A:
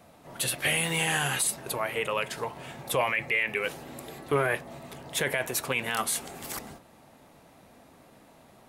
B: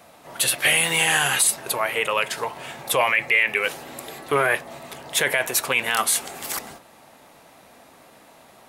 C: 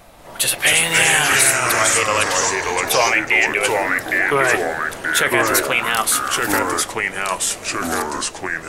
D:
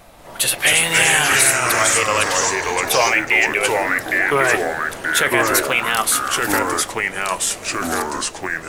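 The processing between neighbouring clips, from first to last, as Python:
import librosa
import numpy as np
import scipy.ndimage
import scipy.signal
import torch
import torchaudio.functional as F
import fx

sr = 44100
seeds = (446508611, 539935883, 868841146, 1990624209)

y1 = fx.low_shelf(x, sr, hz=360.0, db=-11.5)
y1 = y1 * librosa.db_to_amplitude(8.5)
y2 = fx.dmg_noise_colour(y1, sr, seeds[0], colour='brown', level_db=-53.0)
y2 = fx.echo_pitch(y2, sr, ms=187, semitones=-3, count=3, db_per_echo=-3.0)
y2 = y2 * librosa.db_to_amplitude(3.0)
y3 = fx.block_float(y2, sr, bits=7)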